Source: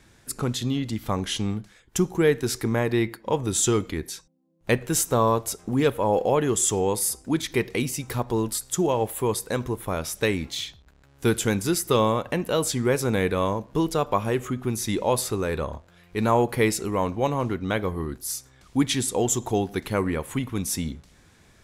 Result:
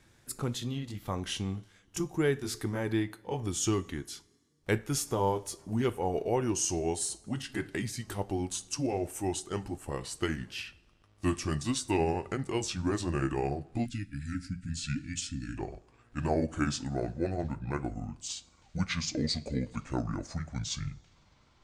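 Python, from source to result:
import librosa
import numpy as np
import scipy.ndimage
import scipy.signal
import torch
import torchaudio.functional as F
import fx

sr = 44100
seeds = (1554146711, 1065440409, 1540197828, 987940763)

y = fx.pitch_glide(x, sr, semitones=-9.0, runs='starting unshifted')
y = fx.rev_double_slope(y, sr, seeds[0], early_s=0.22, late_s=1.7, knee_db=-21, drr_db=13.0)
y = fx.spec_erase(y, sr, start_s=13.86, length_s=1.71, low_hz=320.0, high_hz=1300.0)
y = y * 10.0 ** (-7.0 / 20.0)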